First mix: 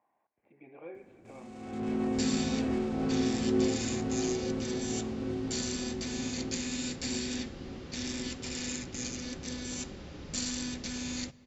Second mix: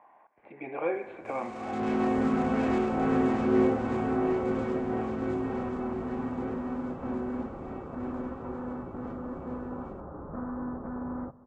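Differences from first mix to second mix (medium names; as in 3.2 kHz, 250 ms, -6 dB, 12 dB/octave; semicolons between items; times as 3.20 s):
speech +9.0 dB; second sound: add steep low-pass 1.3 kHz 48 dB/octave; master: add peaking EQ 1.1 kHz +11.5 dB 2.7 oct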